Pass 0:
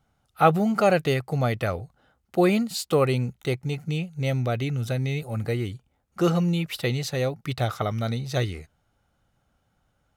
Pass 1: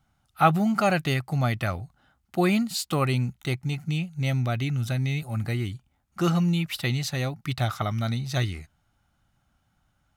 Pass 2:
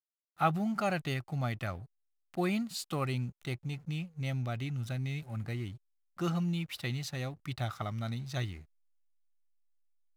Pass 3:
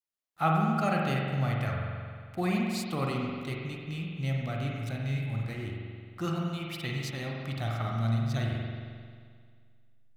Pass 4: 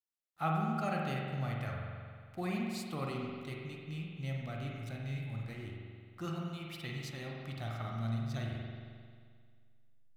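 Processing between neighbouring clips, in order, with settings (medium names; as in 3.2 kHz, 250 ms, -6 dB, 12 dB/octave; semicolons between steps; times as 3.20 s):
peaking EQ 470 Hz -13.5 dB 0.58 oct; trim +1 dB
hysteresis with a dead band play -42 dBFS; trim -9 dB
spring tank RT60 2 s, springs 44 ms, chirp 75 ms, DRR -1.5 dB
feedback comb 77 Hz, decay 0.58 s, harmonics all, mix 50%; trim -2.5 dB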